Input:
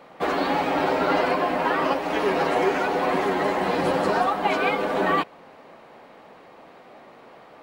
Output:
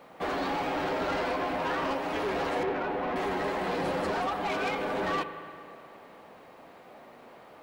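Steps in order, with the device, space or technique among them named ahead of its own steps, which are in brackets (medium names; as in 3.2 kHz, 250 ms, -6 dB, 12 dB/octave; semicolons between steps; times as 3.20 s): 2.63–3.16 s: distance through air 410 m; open-reel tape (saturation -22.5 dBFS, distortion -11 dB; peaking EQ 79 Hz +3.5 dB 0.93 oct; white noise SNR 43 dB); spring tank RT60 2.5 s, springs 33/37 ms, chirp 45 ms, DRR 10 dB; trim -4 dB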